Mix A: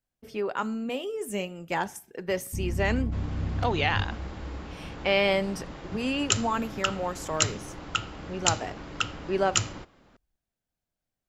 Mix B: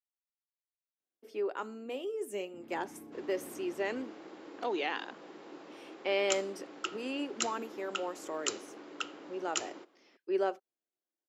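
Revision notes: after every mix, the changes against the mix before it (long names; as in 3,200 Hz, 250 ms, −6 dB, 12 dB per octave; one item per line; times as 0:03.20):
speech: entry +1.00 s
master: add four-pole ladder high-pass 290 Hz, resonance 50%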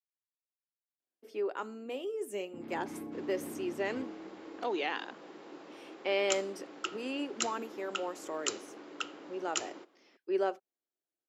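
first sound +8.0 dB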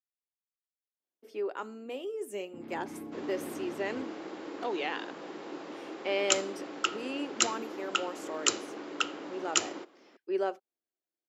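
second sound +7.5 dB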